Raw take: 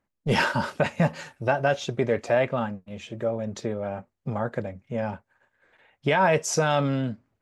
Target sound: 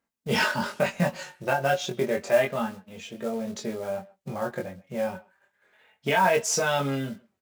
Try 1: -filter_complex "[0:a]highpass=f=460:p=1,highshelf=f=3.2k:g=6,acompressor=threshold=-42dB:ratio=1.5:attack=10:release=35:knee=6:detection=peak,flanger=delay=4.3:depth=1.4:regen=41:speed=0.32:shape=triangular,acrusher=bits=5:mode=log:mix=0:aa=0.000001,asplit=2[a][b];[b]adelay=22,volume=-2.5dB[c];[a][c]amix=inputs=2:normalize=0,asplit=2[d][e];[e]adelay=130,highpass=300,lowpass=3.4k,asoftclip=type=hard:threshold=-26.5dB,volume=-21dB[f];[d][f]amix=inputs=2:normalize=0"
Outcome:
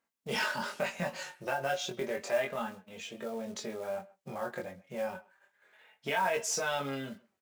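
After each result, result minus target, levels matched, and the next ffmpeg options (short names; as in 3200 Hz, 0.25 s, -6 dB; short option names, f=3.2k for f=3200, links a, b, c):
compressor: peak gain reduction +8 dB; 125 Hz band -5.0 dB
-filter_complex "[0:a]highpass=f=460:p=1,highshelf=f=3.2k:g=6,flanger=delay=4.3:depth=1.4:regen=41:speed=0.32:shape=triangular,acrusher=bits=5:mode=log:mix=0:aa=0.000001,asplit=2[a][b];[b]adelay=22,volume=-2.5dB[c];[a][c]amix=inputs=2:normalize=0,asplit=2[d][e];[e]adelay=130,highpass=300,lowpass=3.4k,asoftclip=type=hard:threshold=-26.5dB,volume=-21dB[f];[d][f]amix=inputs=2:normalize=0"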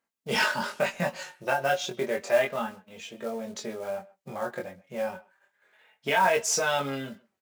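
125 Hz band -6.5 dB
-filter_complex "[0:a]highpass=f=120:p=1,highshelf=f=3.2k:g=6,flanger=delay=4.3:depth=1.4:regen=41:speed=0.32:shape=triangular,acrusher=bits=5:mode=log:mix=0:aa=0.000001,asplit=2[a][b];[b]adelay=22,volume=-2.5dB[c];[a][c]amix=inputs=2:normalize=0,asplit=2[d][e];[e]adelay=130,highpass=300,lowpass=3.4k,asoftclip=type=hard:threshold=-26.5dB,volume=-21dB[f];[d][f]amix=inputs=2:normalize=0"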